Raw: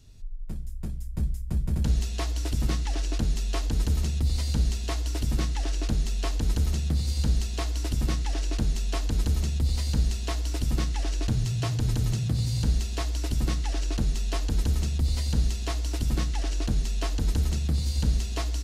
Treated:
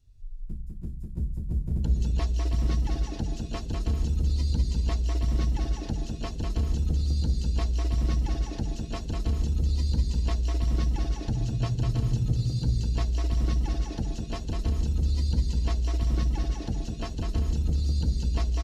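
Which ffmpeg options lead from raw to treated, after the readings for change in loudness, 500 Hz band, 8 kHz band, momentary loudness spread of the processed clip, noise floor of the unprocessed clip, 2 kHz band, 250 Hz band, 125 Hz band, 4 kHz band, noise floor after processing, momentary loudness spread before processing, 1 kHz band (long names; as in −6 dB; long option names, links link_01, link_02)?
−0.5 dB, −1.0 dB, −8.5 dB, 6 LU, −32 dBFS, −5.5 dB, −0.5 dB, 0.0 dB, −5.5 dB, −37 dBFS, 4 LU, −2.0 dB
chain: -af "afftdn=noise_reduction=14:noise_floor=-38,aecho=1:1:200|320|392|435.2|461.1:0.631|0.398|0.251|0.158|0.1,volume=-2.5dB"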